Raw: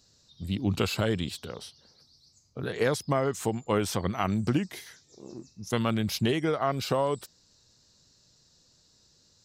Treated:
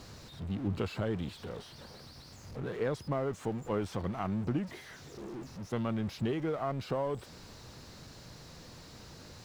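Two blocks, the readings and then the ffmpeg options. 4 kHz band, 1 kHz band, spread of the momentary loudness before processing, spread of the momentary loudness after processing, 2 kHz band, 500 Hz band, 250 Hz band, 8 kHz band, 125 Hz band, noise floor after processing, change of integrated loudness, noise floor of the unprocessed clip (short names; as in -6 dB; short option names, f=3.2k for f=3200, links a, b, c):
-11.5 dB, -7.5 dB, 17 LU, 17 LU, -9.5 dB, -6.0 dB, -5.5 dB, -13.0 dB, -5.0 dB, -52 dBFS, -7.0 dB, -64 dBFS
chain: -af "aeval=exprs='val(0)+0.5*0.0299*sgn(val(0))':c=same,lowpass=f=1.3k:p=1,volume=-7.5dB"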